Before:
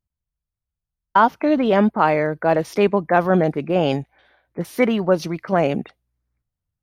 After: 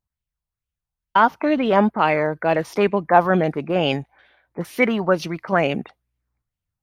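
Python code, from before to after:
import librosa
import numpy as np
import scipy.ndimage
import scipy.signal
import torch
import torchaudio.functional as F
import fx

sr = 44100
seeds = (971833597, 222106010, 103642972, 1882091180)

y = fx.bell_lfo(x, sr, hz=2.2, low_hz=840.0, high_hz=2900.0, db=9)
y = y * librosa.db_to_amplitude(-2.0)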